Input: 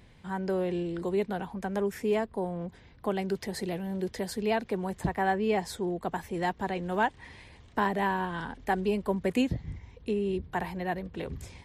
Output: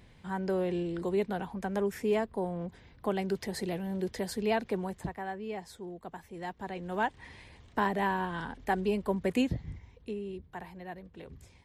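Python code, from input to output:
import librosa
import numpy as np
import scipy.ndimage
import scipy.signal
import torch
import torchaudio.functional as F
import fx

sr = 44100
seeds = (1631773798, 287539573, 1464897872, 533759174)

y = fx.gain(x, sr, db=fx.line((4.78, -1.0), (5.24, -11.0), (6.31, -11.0), (7.22, -1.5), (9.58, -1.5), (10.41, -11.0)))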